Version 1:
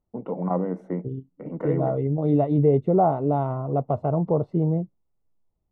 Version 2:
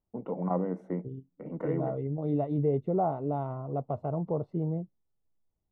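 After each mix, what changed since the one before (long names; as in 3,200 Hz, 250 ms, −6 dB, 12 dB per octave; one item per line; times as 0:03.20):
first voice −4.5 dB
second voice −8.5 dB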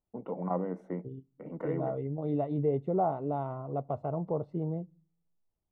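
second voice: send on
master: add low-shelf EQ 440 Hz −4.5 dB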